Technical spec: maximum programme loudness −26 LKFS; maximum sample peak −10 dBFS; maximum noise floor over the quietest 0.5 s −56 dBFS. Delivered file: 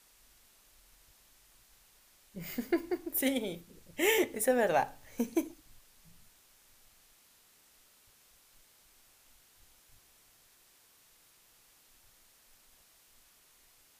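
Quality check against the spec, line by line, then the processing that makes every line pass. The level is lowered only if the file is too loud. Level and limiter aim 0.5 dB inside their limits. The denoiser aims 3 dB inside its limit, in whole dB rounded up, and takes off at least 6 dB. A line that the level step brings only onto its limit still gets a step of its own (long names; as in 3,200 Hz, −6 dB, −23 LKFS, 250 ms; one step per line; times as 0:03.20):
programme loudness −32.5 LKFS: in spec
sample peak −15.0 dBFS: in spec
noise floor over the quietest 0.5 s −64 dBFS: in spec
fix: no processing needed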